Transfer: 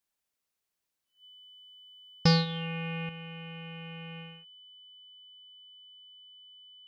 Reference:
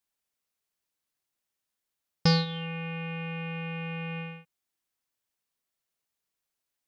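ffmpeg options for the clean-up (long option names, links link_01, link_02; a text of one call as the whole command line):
ffmpeg -i in.wav -af "bandreject=frequency=3000:width=30,asetnsamples=nb_out_samples=441:pad=0,asendcmd='3.09 volume volume 8dB',volume=0dB" out.wav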